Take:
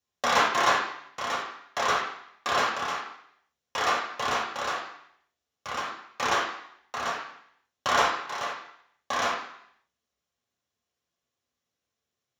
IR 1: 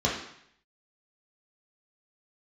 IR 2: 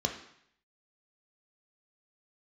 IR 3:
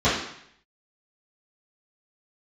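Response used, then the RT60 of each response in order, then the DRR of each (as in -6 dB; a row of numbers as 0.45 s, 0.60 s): 1; 0.70 s, 0.70 s, 0.70 s; -5.0 dB, 3.0 dB, -14.5 dB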